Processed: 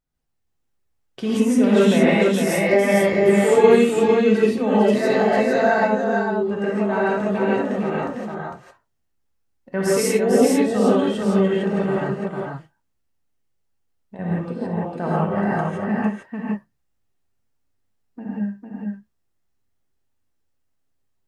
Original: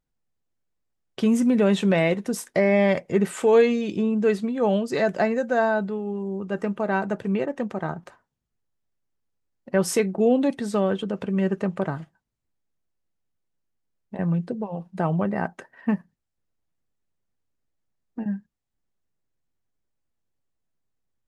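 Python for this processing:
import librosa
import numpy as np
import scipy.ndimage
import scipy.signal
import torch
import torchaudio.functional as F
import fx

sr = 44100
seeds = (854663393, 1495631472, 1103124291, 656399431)

y = fx.echo_multitap(x, sr, ms=(64, 452), db=(-11.5, -3.5))
y = fx.rev_gated(y, sr, seeds[0], gate_ms=190, shape='rising', drr_db=-7.5)
y = y * 10.0 ** (-4.0 / 20.0)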